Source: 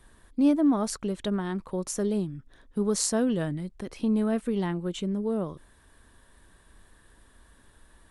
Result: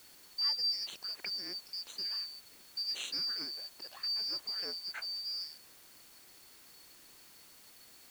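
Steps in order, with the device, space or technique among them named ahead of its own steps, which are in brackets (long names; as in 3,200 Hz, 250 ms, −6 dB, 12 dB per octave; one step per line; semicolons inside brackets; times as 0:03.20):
split-band scrambled radio (band-splitting scrambler in four parts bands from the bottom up 2341; band-pass filter 310–3,000 Hz; white noise bed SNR 18 dB)
level −2.5 dB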